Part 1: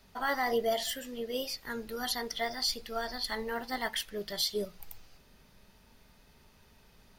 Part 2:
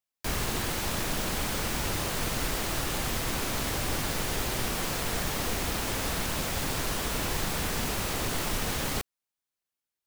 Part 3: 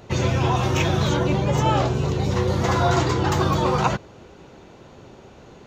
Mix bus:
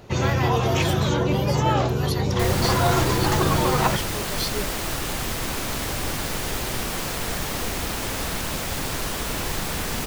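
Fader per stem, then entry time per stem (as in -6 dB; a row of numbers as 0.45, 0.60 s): +1.5, +3.0, -1.0 dB; 0.00, 2.15, 0.00 s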